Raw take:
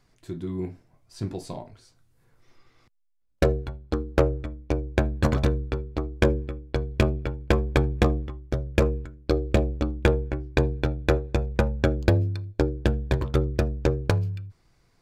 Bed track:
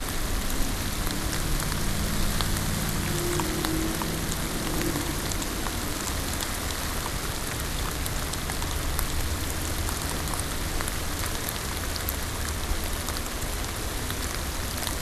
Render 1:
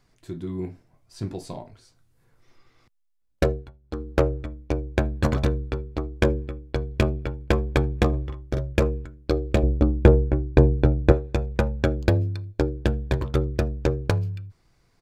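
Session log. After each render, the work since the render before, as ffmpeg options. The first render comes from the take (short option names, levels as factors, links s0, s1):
-filter_complex "[0:a]asplit=3[s0][s1][s2];[s0]afade=t=out:st=8.12:d=0.02[s3];[s1]asplit=2[s4][s5];[s5]adelay=44,volume=0.562[s6];[s4][s6]amix=inputs=2:normalize=0,afade=t=in:st=8.12:d=0.02,afade=t=out:st=8.73:d=0.02[s7];[s2]afade=t=in:st=8.73:d=0.02[s8];[s3][s7][s8]amix=inputs=3:normalize=0,asettb=1/sr,asplit=3[s9][s10][s11];[s9]atrim=end=9.634[s12];[s10]atrim=start=9.63:end=11.12,asetpts=PTS-STARTPTS,afade=t=in:d=0.004:c=qsin,afade=t=out:st=1.486:d=0.004:c=qsin,tiltshelf=f=1200:g=7.5[s13];[s11]atrim=start=11.116[s14];[s12][s13]acrossfade=d=0.004:c1=hsin:c2=qsin[s15];[s15][s14]acrossfade=d=0.004:c1=qsin:c2=hsin,asplit=3[s16][s17][s18];[s16]atrim=end=3.72,asetpts=PTS-STARTPTS,afade=t=out:st=3.43:d=0.29:silence=0.177828[s19];[s17]atrim=start=3.72:end=3.82,asetpts=PTS-STARTPTS,volume=0.178[s20];[s18]atrim=start=3.82,asetpts=PTS-STARTPTS,afade=t=in:d=0.29:silence=0.177828[s21];[s19][s20][s21]concat=n=3:v=0:a=1"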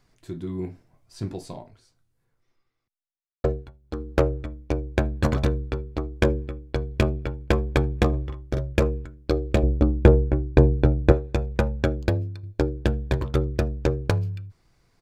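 -filter_complex "[0:a]asplit=3[s0][s1][s2];[s0]atrim=end=3.44,asetpts=PTS-STARTPTS,afade=t=out:st=1.31:d=2.13:c=qua[s3];[s1]atrim=start=3.44:end=12.43,asetpts=PTS-STARTPTS,afade=t=in:d=0.004:c=hsin,afade=t=out:st=8.32:d=0.67:silence=0.421697[s4];[s2]atrim=start=12.43,asetpts=PTS-STARTPTS,afade=t=in:d=0.004:c=hsin:silence=0.421697[s5];[s3][s4][s5]concat=n=3:v=0:a=1"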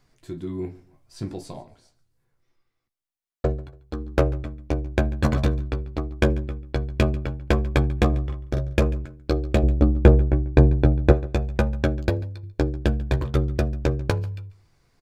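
-filter_complex "[0:a]asplit=2[s0][s1];[s1]adelay=14,volume=0.335[s2];[s0][s2]amix=inputs=2:normalize=0,aecho=1:1:142|284:0.0891|0.0276"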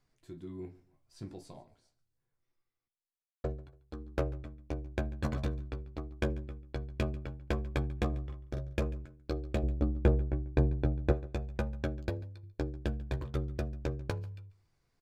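-af "volume=0.237"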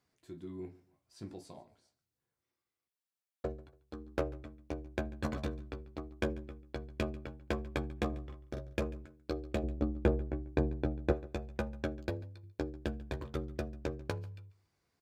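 -af "highpass=82,equalizer=f=130:t=o:w=0.37:g=-7.5"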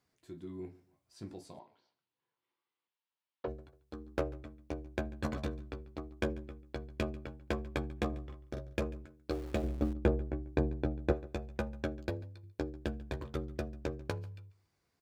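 -filter_complex "[0:a]asettb=1/sr,asplit=3[s0][s1][s2];[s0]atrim=end=1.594[s3];[s1]atrim=start=1.59:end=3.48,asetpts=PTS-STARTPTS,afade=t=in:d=0.004:c=qsin,afade=t=out:st=1.886:d=0.004:c=qsin,highpass=200,equalizer=f=230:t=q:w=4:g=-4,equalizer=f=650:t=q:w=4:g=-4,equalizer=f=950:t=q:w=4:g=9,equalizer=f=3000:t=q:w=4:g=5,lowpass=f=4400:w=0.5412,lowpass=f=4400:w=1.3066[s4];[s2]atrim=start=3.476[s5];[s3][s4]acrossfade=d=0.004:c1=hsin:c2=qsin[s6];[s6][s5]acrossfade=d=0.004:c1=qsin:c2=hsin,asettb=1/sr,asplit=3[s7][s8][s9];[s7]atrim=end=9.304[s10];[s8]atrim=start=9.3:end=9.93,asetpts=PTS-STARTPTS,afade=t=in:d=0.004:c=qsin,afade=t=out:st=0.626:d=0.004:c=qsin,aeval=exprs='val(0)+0.5*0.00562*sgn(val(0))':c=same[s11];[s9]atrim=start=9.926[s12];[s10][s11]acrossfade=d=0.004:c1=hsin:c2=qsin[s13];[s13][s12]acrossfade=d=0.004:c1=qsin:c2=hsin"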